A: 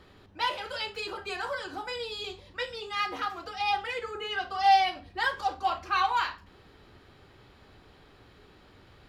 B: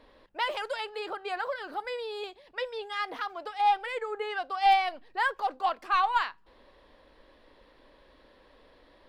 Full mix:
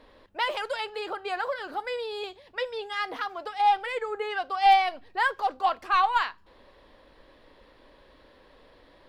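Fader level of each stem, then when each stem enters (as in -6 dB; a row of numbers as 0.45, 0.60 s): -14.5, +2.5 dB; 0.00, 0.00 s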